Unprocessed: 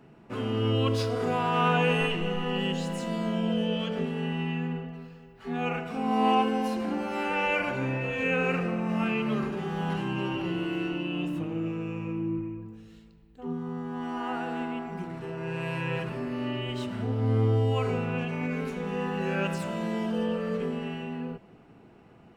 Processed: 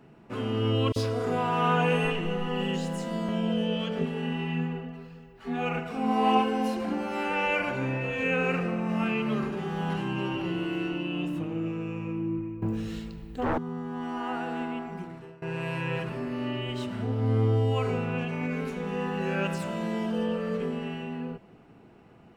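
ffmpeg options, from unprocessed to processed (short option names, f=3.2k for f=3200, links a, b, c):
-filter_complex "[0:a]asettb=1/sr,asplit=3[a][b][c];[a]atrim=end=0.924[d];[b]atrim=start=0.92:end=3.29,asetpts=PTS-STARTPTS,afade=t=in:d=0.004:c=qsin,afade=t=out:st=2.366:d=0.004:c=qsin,acrossover=split=3100[e][f];[e]adelay=40[g];[g][f]amix=inputs=2:normalize=0,atrim=end_sample=104517[h];[c]atrim=start=3.286[i];[d][h]acrossfade=d=0.004:c1=hsin:c2=qsin[j];[j][i]acrossfade=d=0.004:c1=qsin:c2=hsin,asettb=1/sr,asplit=3[k][l][m];[k]atrim=end=4.014[n];[l]atrim=start=4.01:end=6.93,asetpts=PTS-STARTPTS,afade=t=in:d=0.004:c=qsin,afade=t=out:st=2.916:d=0.004:c=qsin,aphaser=in_gain=1:out_gain=1:delay=4.4:decay=0.29:speed=1.7:type=triangular[o];[m]atrim=start=6.926[p];[n][o]acrossfade=d=0.004:c1=hsin:c2=qsin[q];[q][p]acrossfade=d=0.004:c1=qsin:c2=hsin,asettb=1/sr,asplit=3[r][s][t];[r]atrim=end=12.624[u];[s]atrim=start=12.62:end=13.58,asetpts=PTS-STARTPTS,afade=t=in:d=0.004:c=qsin,afade=t=out:st=0.956:d=0.004:c=qsin,aeval=exprs='0.0708*sin(PI/2*3.98*val(0)/0.0708)':c=same[v];[t]atrim=start=13.576[w];[u][v]acrossfade=d=0.004:c1=hsin:c2=qsin[x];[x][w]acrossfade=d=0.004:c1=qsin:c2=hsin,asplit=2[y][z];[y]atrim=end=15.42,asetpts=PTS-STARTPTS,afade=t=out:st=14.68:d=0.74:c=qsin:silence=0.0794328[aa];[z]atrim=start=15.42,asetpts=PTS-STARTPTS,afade=t=in:d=0.004:c=hsin:silence=0.0794328[ab];[aa][ab]concat=n=2:v=0:a=1"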